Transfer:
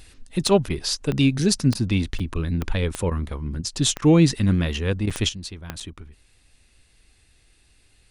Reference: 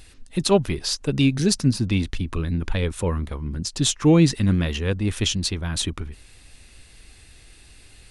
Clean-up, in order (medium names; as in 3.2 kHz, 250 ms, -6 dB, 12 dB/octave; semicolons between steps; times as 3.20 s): de-click; interpolate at 2.19/5.10/5.80 s, 6.4 ms; interpolate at 0.69/1.74/2.34/3.10/3.62/4.01/5.06 s, 10 ms; gain correction +10 dB, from 5.29 s